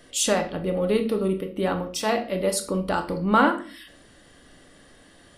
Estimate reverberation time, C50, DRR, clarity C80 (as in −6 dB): 0.45 s, 11.0 dB, 5.0 dB, 16.0 dB